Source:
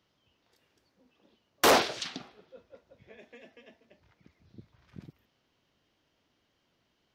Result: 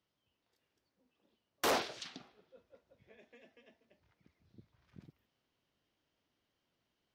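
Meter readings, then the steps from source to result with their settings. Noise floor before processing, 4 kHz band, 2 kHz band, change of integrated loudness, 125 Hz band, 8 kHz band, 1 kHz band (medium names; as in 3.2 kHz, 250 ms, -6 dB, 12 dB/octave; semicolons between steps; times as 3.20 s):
-76 dBFS, -10.5 dB, -10.5 dB, -10.5 dB, -9.5 dB, -10.5 dB, -10.5 dB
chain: gain riding 2 s; trim -8.5 dB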